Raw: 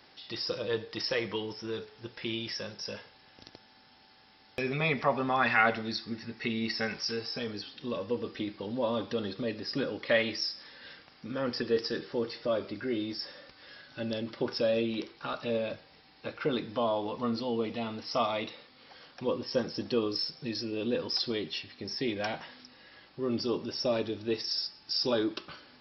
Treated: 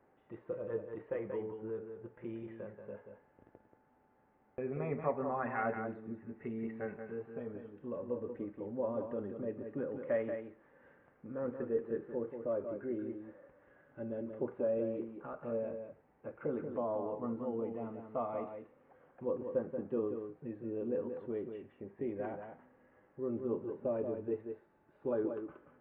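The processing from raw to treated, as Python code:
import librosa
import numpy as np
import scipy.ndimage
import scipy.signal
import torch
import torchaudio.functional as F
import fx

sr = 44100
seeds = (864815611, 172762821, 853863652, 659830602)

y = scipy.ndimage.gaussian_filter1d(x, 5.8, mode='constant')
y = fx.peak_eq(y, sr, hz=470.0, db=8.0, octaves=0.45)
y = fx.notch(y, sr, hz=470.0, q=12.0)
y = y + 10.0 ** (-7.0 / 20.0) * np.pad(y, (int(182 * sr / 1000.0), 0))[:len(y)]
y = y * 10.0 ** (-7.5 / 20.0)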